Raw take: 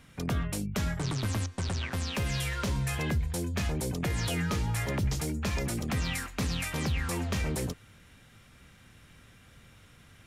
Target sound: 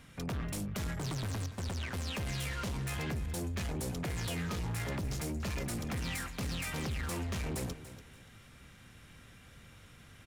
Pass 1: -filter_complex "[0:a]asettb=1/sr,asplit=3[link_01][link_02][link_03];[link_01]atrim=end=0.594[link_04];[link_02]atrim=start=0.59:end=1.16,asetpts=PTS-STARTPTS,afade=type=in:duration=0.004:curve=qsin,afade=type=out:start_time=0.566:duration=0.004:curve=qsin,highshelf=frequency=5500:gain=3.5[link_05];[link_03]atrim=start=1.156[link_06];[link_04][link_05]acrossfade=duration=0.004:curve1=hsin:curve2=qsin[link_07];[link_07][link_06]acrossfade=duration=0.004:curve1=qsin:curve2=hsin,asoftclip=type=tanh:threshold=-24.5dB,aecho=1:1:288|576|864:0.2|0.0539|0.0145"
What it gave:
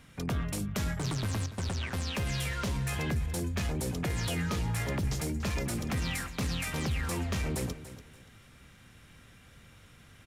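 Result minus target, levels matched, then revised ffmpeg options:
soft clipping: distortion −11 dB
-filter_complex "[0:a]asettb=1/sr,asplit=3[link_01][link_02][link_03];[link_01]atrim=end=0.594[link_04];[link_02]atrim=start=0.59:end=1.16,asetpts=PTS-STARTPTS,afade=type=in:duration=0.004:curve=qsin,afade=type=out:start_time=0.566:duration=0.004:curve=qsin,highshelf=frequency=5500:gain=3.5[link_05];[link_03]atrim=start=1.156[link_06];[link_04][link_05]acrossfade=duration=0.004:curve1=hsin:curve2=qsin[link_07];[link_07][link_06]acrossfade=duration=0.004:curve1=qsin:curve2=hsin,asoftclip=type=tanh:threshold=-33.5dB,aecho=1:1:288|576|864:0.2|0.0539|0.0145"

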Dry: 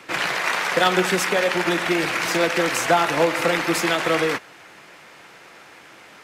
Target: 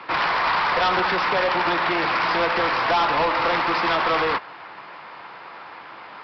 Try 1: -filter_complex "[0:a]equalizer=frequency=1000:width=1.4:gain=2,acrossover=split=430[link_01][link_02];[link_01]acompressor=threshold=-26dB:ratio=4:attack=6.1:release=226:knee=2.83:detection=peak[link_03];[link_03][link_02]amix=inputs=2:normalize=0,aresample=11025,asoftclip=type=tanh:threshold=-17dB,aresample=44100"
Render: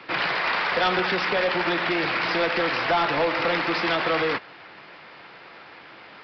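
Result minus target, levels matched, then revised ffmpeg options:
1,000 Hz band −3.5 dB
-filter_complex "[0:a]equalizer=frequency=1000:width=1.4:gain=13,acrossover=split=430[link_01][link_02];[link_01]acompressor=threshold=-26dB:ratio=4:attack=6.1:release=226:knee=2.83:detection=peak[link_03];[link_03][link_02]amix=inputs=2:normalize=0,aresample=11025,asoftclip=type=tanh:threshold=-17dB,aresample=44100"

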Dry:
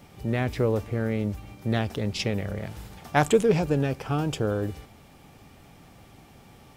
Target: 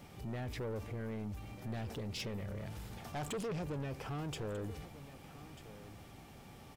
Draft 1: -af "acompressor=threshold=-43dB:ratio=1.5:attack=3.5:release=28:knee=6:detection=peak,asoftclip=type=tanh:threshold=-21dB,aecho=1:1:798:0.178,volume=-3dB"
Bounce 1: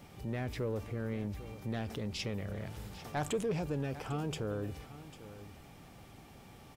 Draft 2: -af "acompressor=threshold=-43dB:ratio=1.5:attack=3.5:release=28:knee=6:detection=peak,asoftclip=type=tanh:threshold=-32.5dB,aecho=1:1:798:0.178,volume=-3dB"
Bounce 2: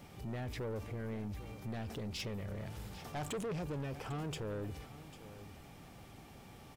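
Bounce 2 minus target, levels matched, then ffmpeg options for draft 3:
echo 444 ms early
-af "acompressor=threshold=-43dB:ratio=1.5:attack=3.5:release=28:knee=6:detection=peak,asoftclip=type=tanh:threshold=-32.5dB,aecho=1:1:1242:0.178,volume=-3dB"

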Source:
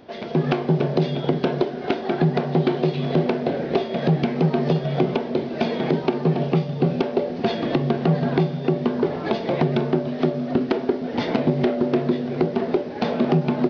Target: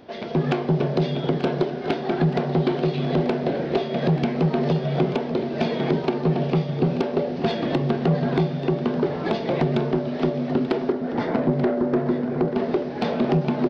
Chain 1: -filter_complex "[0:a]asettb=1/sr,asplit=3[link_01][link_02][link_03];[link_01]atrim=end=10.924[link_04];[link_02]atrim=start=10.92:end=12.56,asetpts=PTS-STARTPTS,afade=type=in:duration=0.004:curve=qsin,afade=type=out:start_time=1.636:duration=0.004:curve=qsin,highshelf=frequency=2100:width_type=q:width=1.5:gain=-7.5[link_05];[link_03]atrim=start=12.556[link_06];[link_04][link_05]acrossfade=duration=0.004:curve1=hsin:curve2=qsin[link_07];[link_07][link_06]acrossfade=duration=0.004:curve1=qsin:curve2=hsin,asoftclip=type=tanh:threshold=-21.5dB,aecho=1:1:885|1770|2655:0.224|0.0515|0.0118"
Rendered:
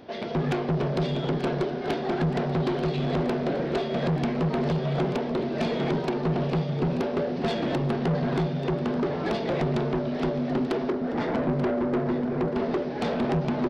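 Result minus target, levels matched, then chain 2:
soft clipping: distortion +11 dB
-filter_complex "[0:a]asettb=1/sr,asplit=3[link_01][link_02][link_03];[link_01]atrim=end=10.924[link_04];[link_02]atrim=start=10.92:end=12.56,asetpts=PTS-STARTPTS,afade=type=in:duration=0.004:curve=qsin,afade=type=out:start_time=1.636:duration=0.004:curve=qsin,highshelf=frequency=2100:width_type=q:width=1.5:gain=-7.5[link_05];[link_03]atrim=start=12.556[link_06];[link_04][link_05]acrossfade=duration=0.004:curve1=hsin:curve2=qsin[link_07];[link_07][link_06]acrossfade=duration=0.004:curve1=qsin:curve2=hsin,asoftclip=type=tanh:threshold=-11.5dB,aecho=1:1:885|1770|2655:0.224|0.0515|0.0118"

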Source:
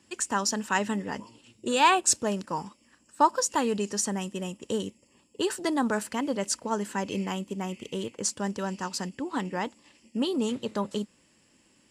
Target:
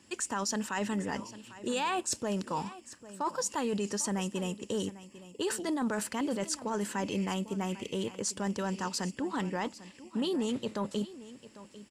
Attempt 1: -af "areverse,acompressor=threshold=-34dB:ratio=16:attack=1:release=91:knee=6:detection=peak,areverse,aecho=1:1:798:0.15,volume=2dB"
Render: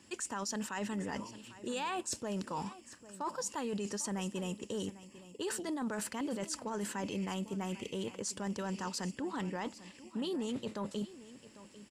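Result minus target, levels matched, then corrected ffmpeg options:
downward compressor: peak gain reduction +5.5 dB
-af "areverse,acompressor=threshold=-28dB:ratio=16:attack=1:release=91:knee=6:detection=peak,areverse,aecho=1:1:798:0.15,volume=2dB"

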